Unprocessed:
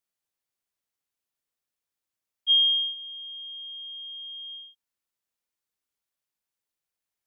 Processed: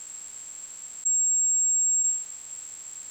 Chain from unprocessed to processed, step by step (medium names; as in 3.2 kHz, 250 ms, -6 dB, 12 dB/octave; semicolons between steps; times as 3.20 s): spectral levelling over time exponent 0.6; low-pass 3.1 kHz 12 dB/octave; reverberation RT60 5.0 s, pre-delay 105 ms, DRR 18 dB; speed mistake 33 rpm record played at 78 rpm; level flattener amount 100%; trim -1.5 dB